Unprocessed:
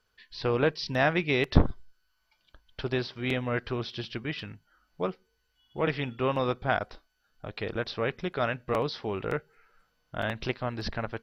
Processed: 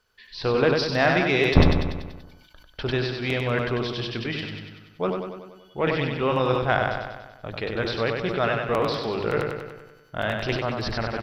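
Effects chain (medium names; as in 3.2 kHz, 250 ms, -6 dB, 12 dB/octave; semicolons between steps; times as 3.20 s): single-diode clipper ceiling -8 dBFS; hum notches 50/100/150/200/250/300/350 Hz; on a send: feedback delay 96 ms, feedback 58%, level -5 dB; on the sum: decay stretcher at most 52 dB/s; trim +4 dB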